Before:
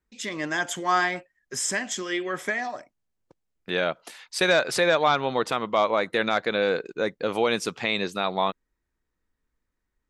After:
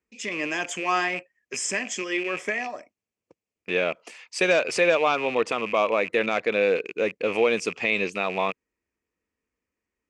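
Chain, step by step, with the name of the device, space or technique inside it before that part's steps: car door speaker with a rattle (rattling part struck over -43 dBFS, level -25 dBFS; speaker cabinet 100–8400 Hz, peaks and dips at 140 Hz -10 dB, 460 Hz +4 dB, 840 Hz -4 dB, 1500 Hz -6 dB, 2500 Hz +8 dB, 3800 Hz -10 dB)

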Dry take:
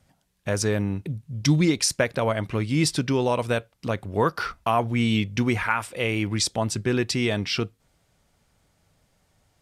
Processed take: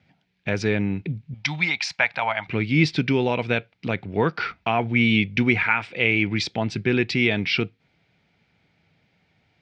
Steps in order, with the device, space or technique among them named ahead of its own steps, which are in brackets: guitar cabinet (speaker cabinet 110–4300 Hz, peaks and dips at 170 Hz +3 dB, 570 Hz -6 dB, 1100 Hz -9 dB, 2300 Hz +9 dB); 1.34–2.48 resonant low shelf 570 Hz -13 dB, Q 3; gain +2.5 dB

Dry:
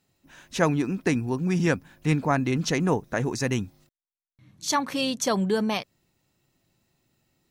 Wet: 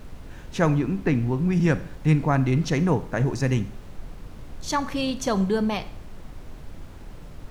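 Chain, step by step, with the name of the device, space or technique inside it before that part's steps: 0.79–1.53 LPF 3700 Hz; car interior (bell 130 Hz +7 dB 0.83 oct; high shelf 3800 Hz -7 dB; brown noise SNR 12 dB); Schroeder reverb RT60 0.57 s, combs from 30 ms, DRR 13.5 dB

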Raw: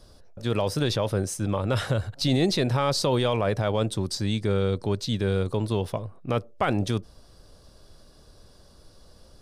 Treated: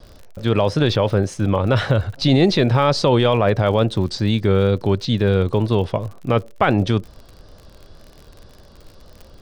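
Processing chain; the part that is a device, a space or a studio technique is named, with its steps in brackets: lo-fi chain (LPF 4000 Hz 12 dB/oct; wow and flutter; crackle 50/s -40 dBFS); gain +8 dB

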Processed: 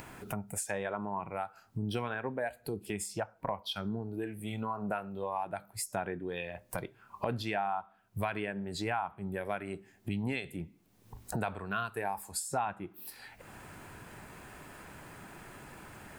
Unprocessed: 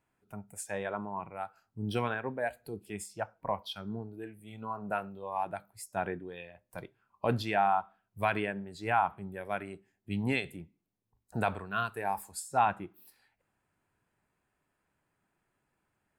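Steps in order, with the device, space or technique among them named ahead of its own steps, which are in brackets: upward and downward compression (upward compressor, threshold -33 dBFS; compressor 4:1, threshold -36 dBFS, peak gain reduction 12.5 dB); gain +4.5 dB

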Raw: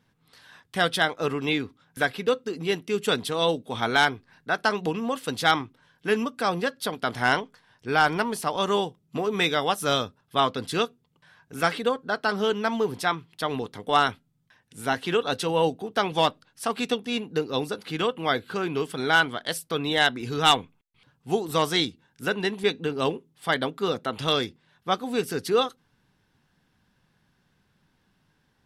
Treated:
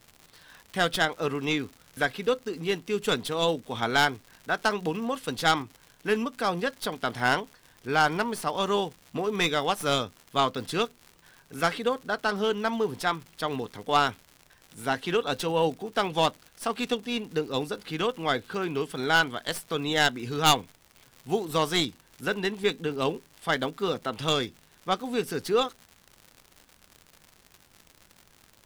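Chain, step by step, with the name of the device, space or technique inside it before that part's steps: record under a worn stylus (tracing distortion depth 0.083 ms; crackle 130/s -35 dBFS; pink noise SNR 35 dB); gain -2 dB

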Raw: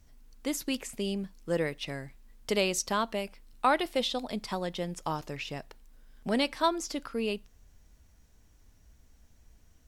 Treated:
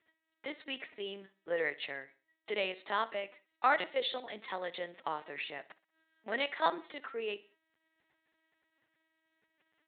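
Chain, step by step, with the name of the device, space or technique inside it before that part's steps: 2.03–2.71 bell 1400 Hz -3.5 dB 2.4 oct; talking toy (LPC vocoder at 8 kHz pitch kept; HPF 420 Hz 12 dB/oct; bell 1900 Hz +8.5 dB 0.4 oct); feedback echo 62 ms, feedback 41%, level -19.5 dB; gain -2.5 dB

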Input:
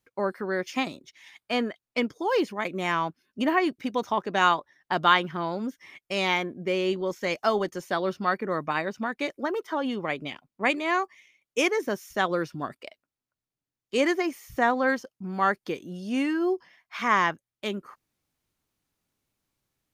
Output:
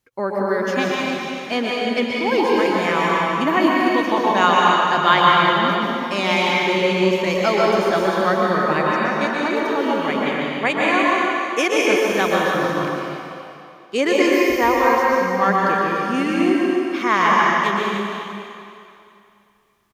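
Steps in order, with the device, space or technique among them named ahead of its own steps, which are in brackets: 14.12–14.98 ripple EQ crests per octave 0.8, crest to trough 11 dB; cave (echo 0.295 s -11 dB; reverb RT60 2.6 s, pre-delay 0.115 s, DRR -4.5 dB); gain +3.5 dB

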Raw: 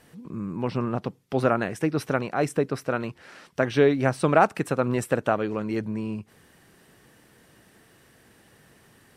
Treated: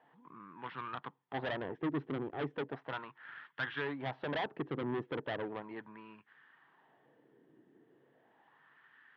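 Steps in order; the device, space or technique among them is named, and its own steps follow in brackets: wah-wah guitar rig (wah 0.36 Hz 350–1500 Hz, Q 2.6; tube stage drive 34 dB, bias 0.6; speaker cabinet 99–3800 Hz, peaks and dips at 140 Hz +10 dB, 280 Hz +6 dB, 560 Hz -4 dB, 930 Hz +5 dB, 1800 Hz +7 dB, 3300 Hz +9 dB)

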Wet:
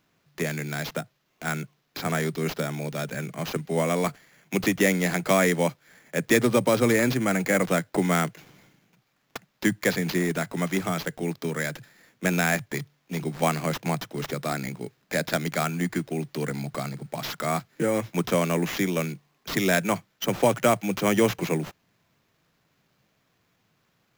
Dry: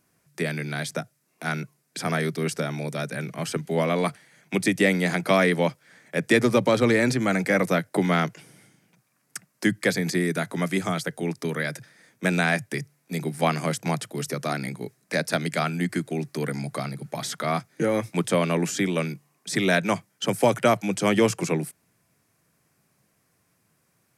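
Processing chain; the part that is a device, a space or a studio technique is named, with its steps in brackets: early companding sampler (sample-rate reducer 9000 Hz, jitter 0%; companded quantiser 8-bit); gain -1 dB

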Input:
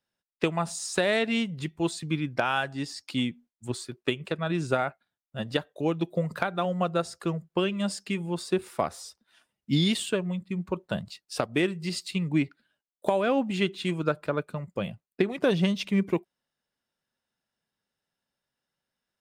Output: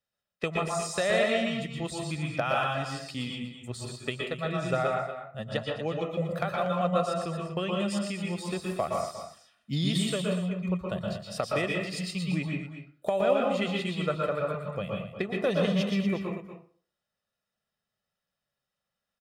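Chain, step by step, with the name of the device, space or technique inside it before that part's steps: 5.44–6.07 LPF 9500 Hz 24 dB/oct; microphone above a desk (comb 1.6 ms, depth 51%; reverb RT60 0.45 s, pre-delay 0.114 s, DRR -0.5 dB); echo 0.238 s -10.5 dB; gain -5 dB

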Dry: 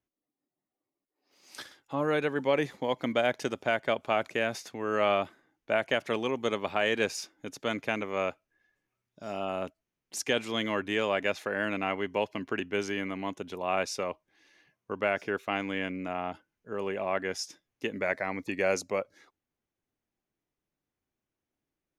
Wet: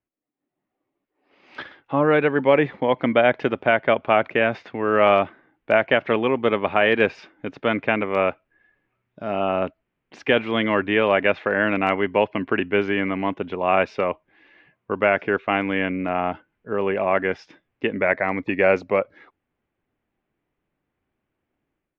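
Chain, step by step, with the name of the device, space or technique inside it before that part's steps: action camera in a waterproof case (LPF 2800 Hz 24 dB/oct; AGC gain up to 11 dB; AAC 96 kbps 32000 Hz)

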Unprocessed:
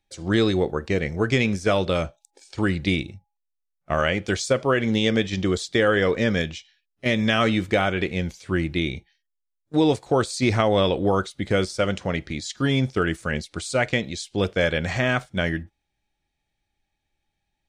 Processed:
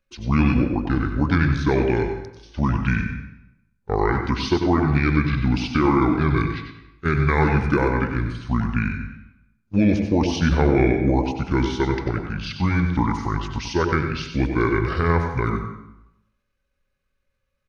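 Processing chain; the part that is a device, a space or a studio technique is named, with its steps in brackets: monster voice (pitch shift -7 st; low shelf 130 Hz +4 dB; echo 95 ms -10 dB; reverb RT60 0.85 s, pre-delay 81 ms, DRR 7 dB)

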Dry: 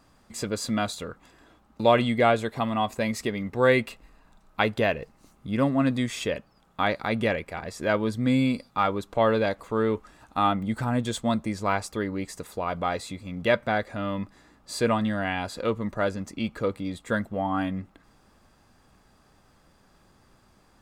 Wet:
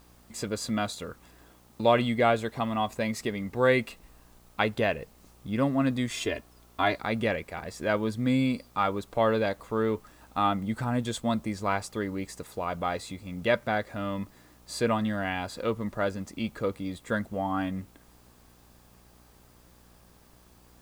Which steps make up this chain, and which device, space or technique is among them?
6.1–6.98 comb 2.9 ms, depth 88%; video cassette with head-switching buzz (buzz 60 Hz, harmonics 20, -57 dBFS -5 dB/oct; white noise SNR 34 dB); gain -2.5 dB

